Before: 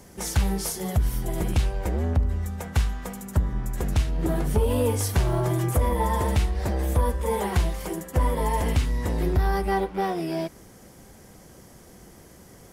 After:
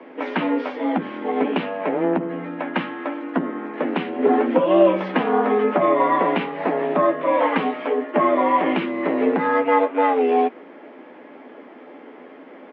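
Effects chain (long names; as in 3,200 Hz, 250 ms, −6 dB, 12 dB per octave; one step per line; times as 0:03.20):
double-tracking delay 12 ms −7 dB
single-sideband voice off tune +91 Hz 150–2,800 Hz
level +8.5 dB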